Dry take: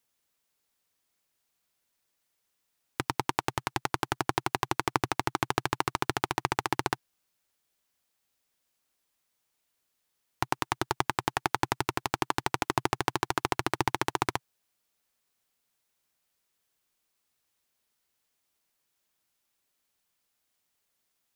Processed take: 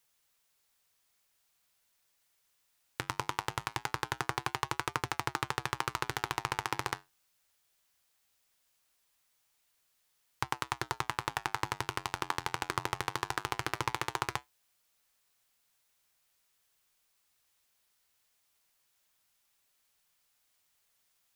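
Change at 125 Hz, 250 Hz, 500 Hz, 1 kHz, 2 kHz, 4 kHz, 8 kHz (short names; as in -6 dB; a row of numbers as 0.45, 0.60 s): -5.0, -10.0, -8.0, -5.0, -3.0, -3.0, -3.5 dB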